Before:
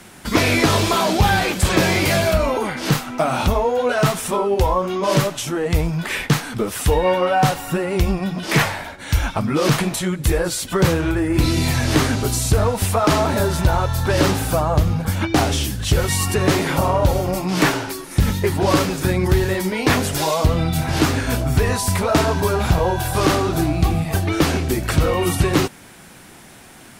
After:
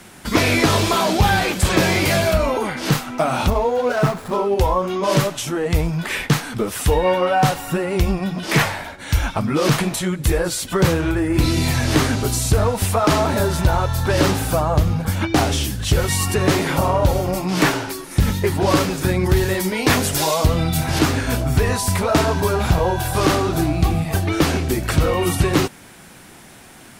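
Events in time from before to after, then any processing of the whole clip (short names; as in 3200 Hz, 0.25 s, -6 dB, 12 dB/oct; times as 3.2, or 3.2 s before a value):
3.5–4.54 median filter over 15 samples
19.36–20.99 high shelf 4400 Hz +5 dB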